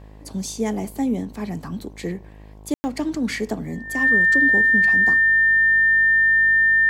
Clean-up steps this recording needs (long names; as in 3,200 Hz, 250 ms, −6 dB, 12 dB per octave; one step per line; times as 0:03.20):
hum removal 52.1 Hz, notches 21
notch filter 1,800 Hz, Q 30
ambience match 0:02.74–0:02.84